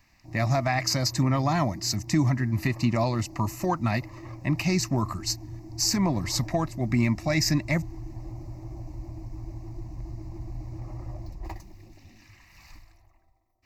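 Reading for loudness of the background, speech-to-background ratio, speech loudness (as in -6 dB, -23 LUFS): -41.0 LUFS, 14.5 dB, -26.5 LUFS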